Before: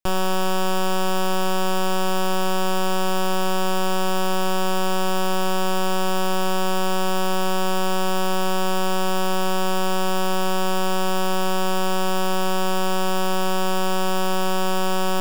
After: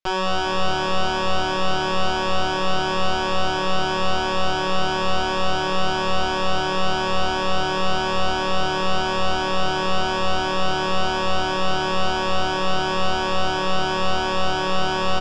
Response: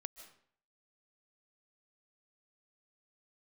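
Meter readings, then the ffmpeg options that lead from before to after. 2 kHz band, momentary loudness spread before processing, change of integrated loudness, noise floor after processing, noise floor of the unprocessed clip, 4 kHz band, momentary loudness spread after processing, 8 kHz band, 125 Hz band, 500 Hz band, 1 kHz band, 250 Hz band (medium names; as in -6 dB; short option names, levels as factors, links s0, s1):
+4.0 dB, 0 LU, +1.0 dB, -23 dBFS, -19 dBFS, +3.5 dB, 0 LU, -6.0 dB, no reading, 0.0 dB, +1.5 dB, -2.5 dB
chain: -filter_complex "[0:a]lowpass=f=5600:w=0.5412,lowpass=f=5600:w=1.3066,lowshelf=f=290:g=-10.5,asplit=9[s0][s1][s2][s3][s4][s5][s6][s7][s8];[s1]adelay=199,afreqshift=-75,volume=0.251[s9];[s2]adelay=398,afreqshift=-150,volume=0.16[s10];[s3]adelay=597,afreqshift=-225,volume=0.102[s11];[s4]adelay=796,afreqshift=-300,volume=0.0661[s12];[s5]adelay=995,afreqshift=-375,volume=0.0422[s13];[s6]adelay=1194,afreqshift=-450,volume=0.0269[s14];[s7]adelay=1393,afreqshift=-525,volume=0.0172[s15];[s8]adelay=1592,afreqshift=-600,volume=0.0111[s16];[s0][s9][s10][s11][s12][s13][s14][s15][s16]amix=inputs=9:normalize=0,asplit=2[s17][s18];[1:a]atrim=start_sample=2205[s19];[s18][s19]afir=irnorm=-1:irlink=0,volume=1.78[s20];[s17][s20]amix=inputs=2:normalize=0,asplit=2[s21][s22];[s22]adelay=11.7,afreqshift=2.9[s23];[s21][s23]amix=inputs=2:normalize=1"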